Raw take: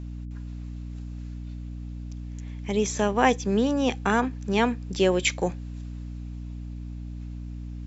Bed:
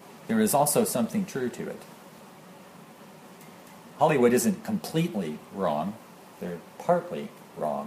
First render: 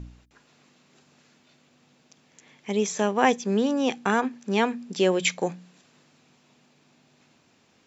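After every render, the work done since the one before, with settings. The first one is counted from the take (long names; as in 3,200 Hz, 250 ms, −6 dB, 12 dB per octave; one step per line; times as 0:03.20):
hum removal 60 Hz, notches 5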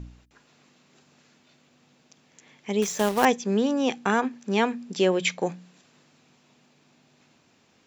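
0:02.82–0:03.25: log-companded quantiser 4 bits
0:05.05–0:05.46: high-frequency loss of the air 56 metres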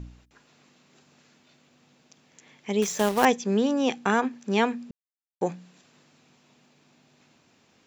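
0:04.91–0:05.41: silence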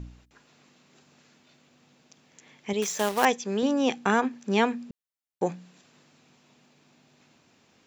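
0:02.73–0:03.63: low-shelf EQ 350 Hz −8.5 dB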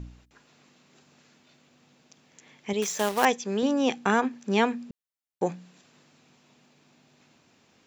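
no processing that can be heard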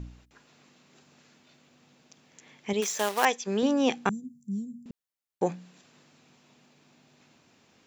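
0:02.80–0:03.46: high-pass filter 280 Hz → 760 Hz 6 dB per octave
0:04.09–0:04.86: elliptic band-stop filter 180–9,200 Hz, stop band 80 dB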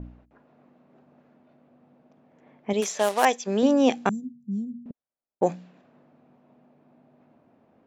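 low-pass that shuts in the quiet parts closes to 1,100 Hz, open at −22.5 dBFS
graphic EQ with 15 bands 250 Hz +5 dB, 630 Hz +8 dB, 10,000 Hz +5 dB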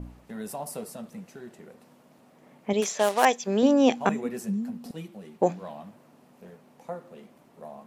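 mix in bed −13.5 dB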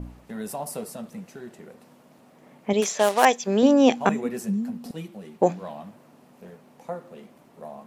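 level +3 dB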